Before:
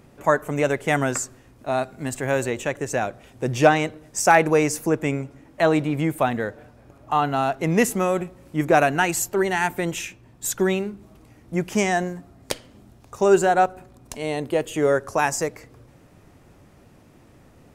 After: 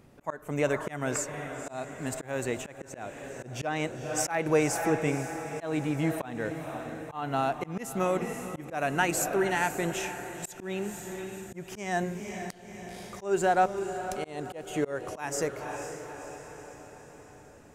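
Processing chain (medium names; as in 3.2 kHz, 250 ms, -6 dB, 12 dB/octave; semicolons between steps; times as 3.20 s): echo that smears into a reverb 512 ms, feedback 56%, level -11 dB; slow attack 242 ms; trim -5.5 dB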